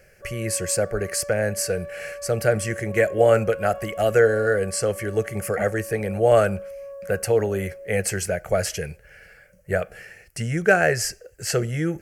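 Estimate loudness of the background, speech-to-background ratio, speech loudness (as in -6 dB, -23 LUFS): -37.0 LUFS, 14.0 dB, -23.0 LUFS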